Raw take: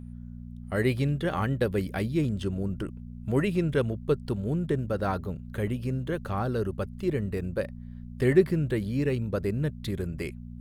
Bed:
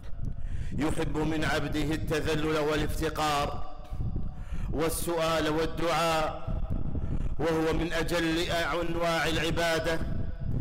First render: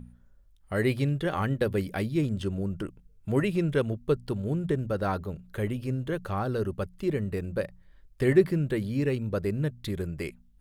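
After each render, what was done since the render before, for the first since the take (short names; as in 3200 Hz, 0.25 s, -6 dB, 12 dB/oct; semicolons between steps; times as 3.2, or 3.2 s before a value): de-hum 60 Hz, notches 4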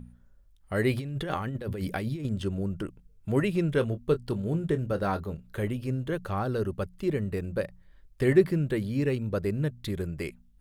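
0.93–2.25 negative-ratio compressor -32 dBFS; 3.75–5.65 doubler 25 ms -11 dB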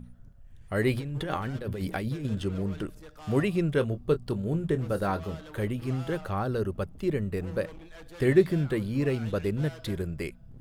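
add bed -19 dB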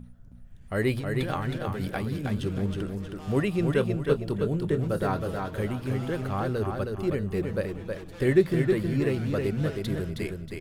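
feedback echo 0.317 s, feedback 34%, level -4.5 dB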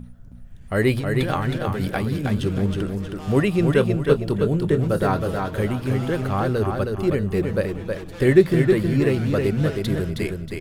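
gain +6.5 dB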